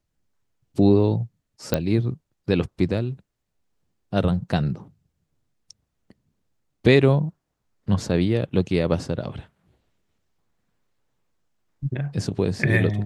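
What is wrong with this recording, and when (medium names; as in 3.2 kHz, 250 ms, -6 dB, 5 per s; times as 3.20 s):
1.74 s: pop -6 dBFS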